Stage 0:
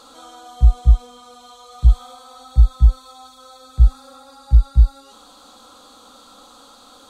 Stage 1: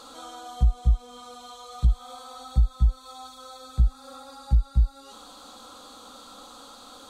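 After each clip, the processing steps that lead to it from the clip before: compressor 2.5:1, threshold -20 dBFS, peak gain reduction 10 dB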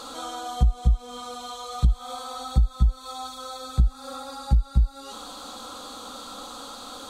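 compressor 2.5:1, threshold -25 dBFS, peak gain reduction 7.5 dB; gain +7 dB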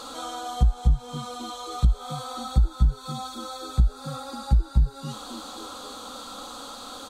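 frequency-shifting echo 0.267 s, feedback 55%, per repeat +90 Hz, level -18.5 dB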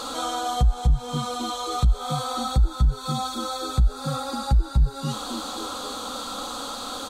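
limiter -18 dBFS, peak gain reduction 9.5 dB; gain +6.5 dB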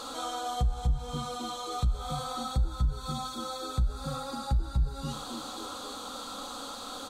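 reverb RT60 0.65 s, pre-delay 9 ms, DRR 14.5 dB; gain -7.5 dB

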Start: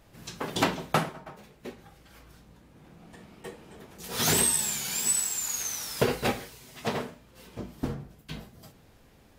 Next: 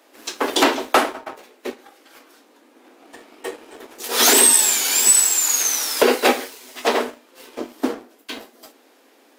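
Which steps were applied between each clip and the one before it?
steep high-pass 250 Hz 72 dB/oct; sample leveller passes 1; maximiser +12 dB; gain -3 dB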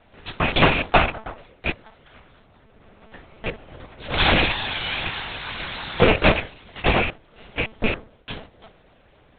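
rattling part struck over -36 dBFS, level -8 dBFS; monotone LPC vocoder at 8 kHz 220 Hz

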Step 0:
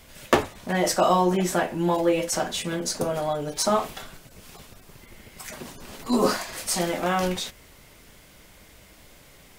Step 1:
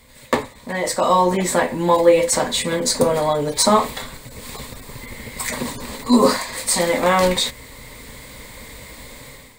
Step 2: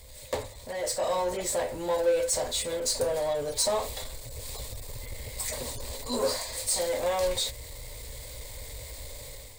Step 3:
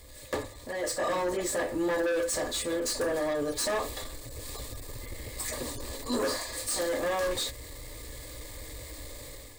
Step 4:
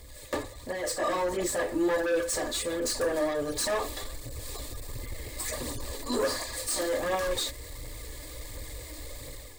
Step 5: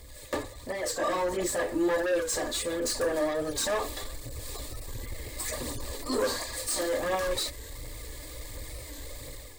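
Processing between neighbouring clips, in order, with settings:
ripple EQ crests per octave 0.99, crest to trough 9 dB; AGC gain up to 13 dB; gain -1 dB
EQ curve 100 Hz 0 dB, 190 Hz -22 dB, 580 Hz -3 dB, 1300 Hz -17 dB, 5000 Hz -3 dB; power-law curve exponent 0.7; gain -8 dB
hard clip -26 dBFS, distortion -13 dB; small resonant body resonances 310/1200/1700 Hz, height 14 dB, ringing for 45 ms; gain -2 dB
phaser 1.4 Hz, delay 3.5 ms, feedback 37%
record warp 45 rpm, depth 100 cents

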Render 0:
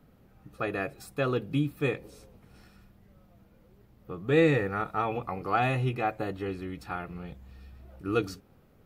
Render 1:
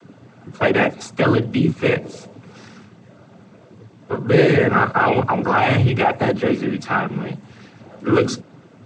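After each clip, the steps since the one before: in parallel at +1 dB: negative-ratio compressor -30 dBFS, ratio -0.5; on the sum: noise vocoder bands 16; gain +8 dB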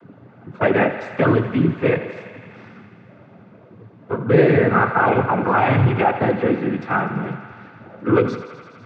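LPF 2000 Hz 12 dB/oct; thinning echo 83 ms, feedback 83%, high-pass 400 Hz, level -12 dB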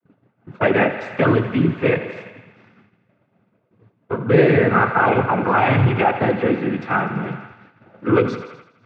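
expander -33 dBFS; bell 2700 Hz +3.5 dB 0.97 oct

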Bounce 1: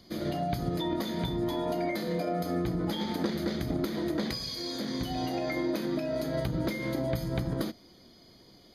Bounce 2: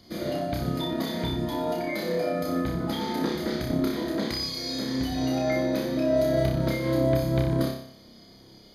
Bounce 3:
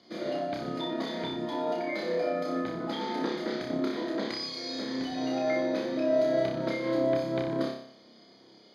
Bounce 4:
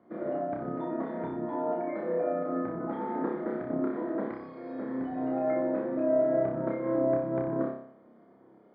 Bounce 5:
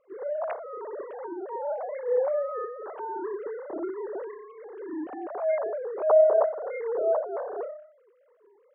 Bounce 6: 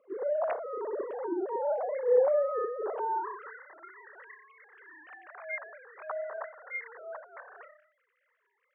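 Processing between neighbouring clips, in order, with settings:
flutter echo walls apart 5.2 m, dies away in 0.61 s; gain +1 dB
HPF 280 Hz 12 dB/oct; air absorption 100 m; gain -1 dB
LPF 1500 Hz 24 dB/oct
sine-wave speech; gain +2 dB
high-pass sweep 250 Hz -> 1900 Hz, 2.66–3.64; MP3 32 kbps 8000 Hz

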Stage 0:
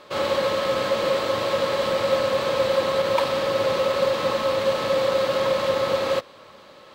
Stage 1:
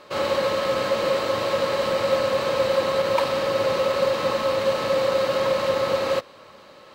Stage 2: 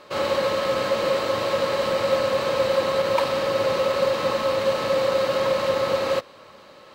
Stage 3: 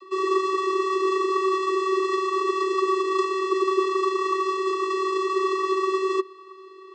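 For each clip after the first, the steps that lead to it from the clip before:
notch 3400 Hz, Q 14
nothing audible
tracing distortion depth 0.31 ms; vocoder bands 32, square 380 Hz

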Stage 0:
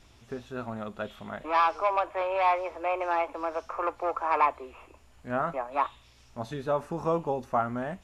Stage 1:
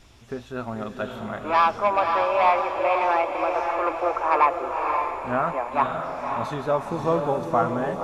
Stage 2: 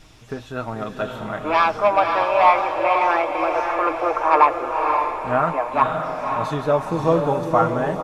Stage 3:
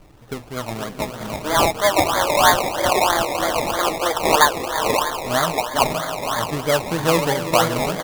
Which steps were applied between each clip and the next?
diffused feedback echo 0.546 s, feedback 47%, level -4 dB; gain +4.5 dB
comb 6.5 ms, depth 45%; gain +3.5 dB
decimation with a swept rate 23×, swing 60% 3.1 Hz

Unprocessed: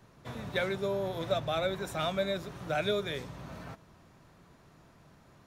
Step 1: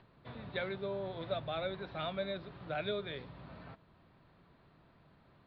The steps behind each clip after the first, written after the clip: upward compressor, threshold -53 dBFS; steep low-pass 4500 Hz 72 dB/oct; gain -6.5 dB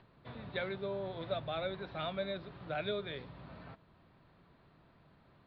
nothing audible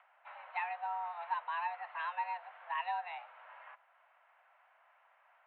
mistuned SSB +350 Hz 330–2500 Hz; gain +1 dB

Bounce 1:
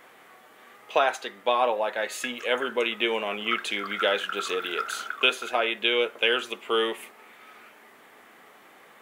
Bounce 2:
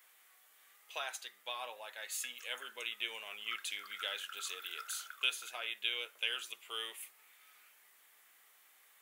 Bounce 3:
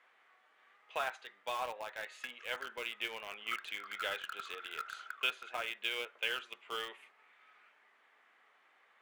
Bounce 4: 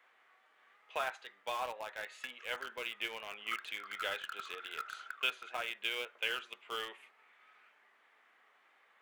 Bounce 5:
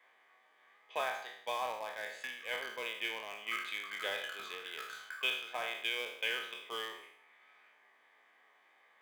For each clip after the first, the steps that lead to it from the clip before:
differentiator; gain -3 dB
LPF 1900 Hz 12 dB/oct; in parallel at -9.5 dB: bit-crush 7-bit; on the sum: gain +4.5 dB
wow and flutter 27 cents
spectral trails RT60 0.68 s; notch comb 1400 Hz

